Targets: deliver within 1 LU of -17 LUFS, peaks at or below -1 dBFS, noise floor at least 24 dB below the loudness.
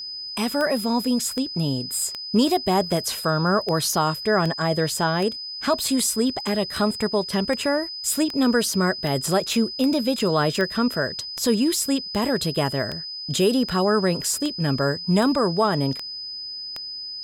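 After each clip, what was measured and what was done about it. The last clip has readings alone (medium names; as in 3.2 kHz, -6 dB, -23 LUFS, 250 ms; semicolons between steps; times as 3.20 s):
clicks found 22; steady tone 5 kHz; tone level -31 dBFS; loudness -22.5 LUFS; peak level -8.5 dBFS; loudness target -17.0 LUFS
-> de-click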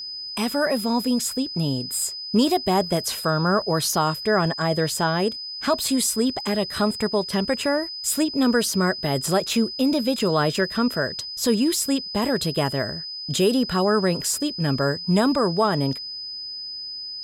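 clicks found 0; steady tone 5 kHz; tone level -31 dBFS
-> band-stop 5 kHz, Q 30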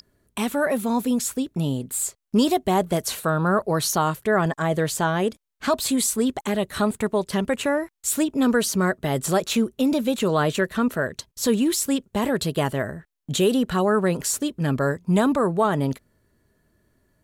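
steady tone not found; loudness -23.0 LUFS; peak level -9.0 dBFS; loudness target -17.0 LUFS
-> trim +6 dB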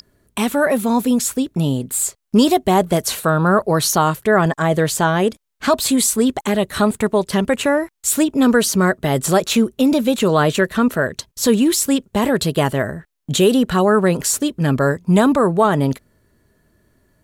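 loudness -17.0 LUFS; peak level -3.0 dBFS; noise floor -64 dBFS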